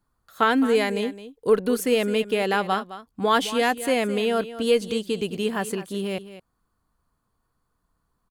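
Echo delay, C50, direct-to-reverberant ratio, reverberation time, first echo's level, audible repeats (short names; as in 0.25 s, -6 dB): 0.213 s, none, none, none, -14.0 dB, 1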